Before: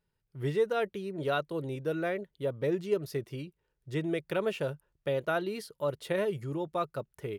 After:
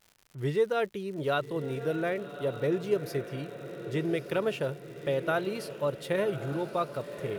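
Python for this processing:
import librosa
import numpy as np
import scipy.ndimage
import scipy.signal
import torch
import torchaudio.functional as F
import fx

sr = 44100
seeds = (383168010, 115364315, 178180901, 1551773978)

p1 = fx.dmg_crackle(x, sr, seeds[0], per_s=150.0, level_db=-45.0)
p2 = p1 + fx.echo_diffused(p1, sr, ms=1166, feedback_pct=53, wet_db=-11, dry=0)
y = p2 * 10.0 ** (1.5 / 20.0)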